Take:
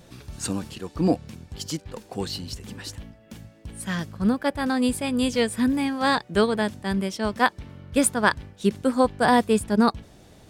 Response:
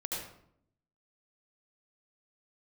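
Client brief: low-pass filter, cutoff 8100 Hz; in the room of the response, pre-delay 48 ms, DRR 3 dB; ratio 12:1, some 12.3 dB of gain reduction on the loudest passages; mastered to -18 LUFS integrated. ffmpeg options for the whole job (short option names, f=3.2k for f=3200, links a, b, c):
-filter_complex "[0:a]lowpass=8.1k,acompressor=threshold=-26dB:ratio=12,asplit=2[a][b];[1:a]atrim=start_sample=2205,adelay=48[c];[b][c]afir=irnorm=-1:irlink=0,volume=-6dB[d];[a][d]amix=inputs=2:normalize=0,volume=13dB"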